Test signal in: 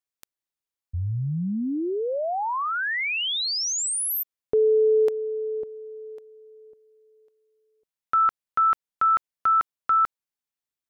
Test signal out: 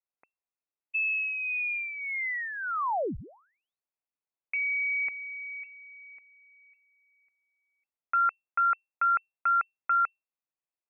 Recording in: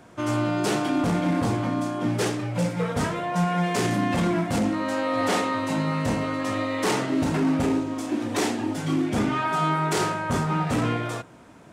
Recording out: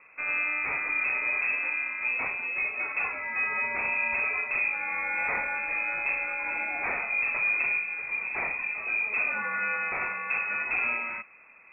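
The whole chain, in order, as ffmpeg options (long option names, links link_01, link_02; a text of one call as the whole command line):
ffmpeg -i in.wav -af "equalizer=frequency=160:width_type=o:width=0.67:gain=-6,equalizer=frequency=400:width_type=o:width=0.67:gain=-11,equalizer=frequency=1000:width_type=o:width=0.67:gain=-10,lowpass=frequency=2300:width_type=q:width=0.5098,lowpass=frequency=2300:width_type=q:width=0.6013,lowpass=frequency=2300:width_type=q:width=0.9,lowpass=frequency=2300:width_type=q:width=2.563,afreqshift=-2700" out.wav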